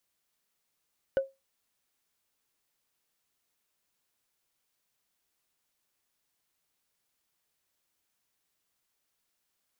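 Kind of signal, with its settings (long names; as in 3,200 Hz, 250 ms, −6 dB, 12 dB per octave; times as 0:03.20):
struck wood, lowest mode 540 Hz, decay 0.21 s, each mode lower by 12 dB, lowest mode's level −19 dB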